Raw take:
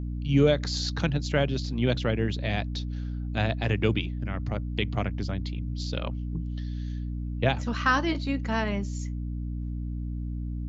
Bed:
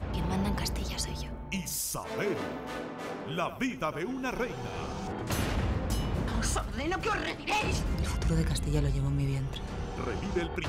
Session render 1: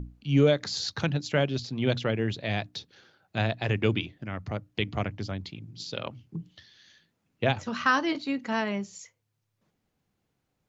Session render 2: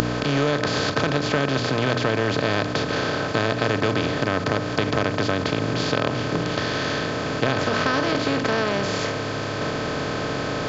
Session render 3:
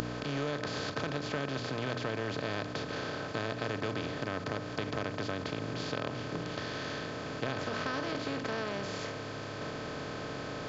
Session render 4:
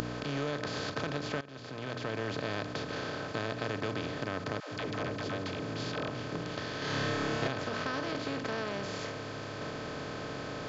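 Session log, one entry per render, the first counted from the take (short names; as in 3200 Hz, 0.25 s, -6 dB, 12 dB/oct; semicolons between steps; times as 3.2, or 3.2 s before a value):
notches 60/120/180/240/300 Hz
per-bin compression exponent 0.2; compressor 2:1, threshold -21 dBFS, peak gain reduction 6 dB
gain -13 dB
1.41–2.2 fade in, from -17.5 dB; 4.6–6.09 dispersion lows, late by 0.123 s, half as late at 360 Hz; 6.79–7.48 flutter echo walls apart 4.9 m, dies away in 1.3 s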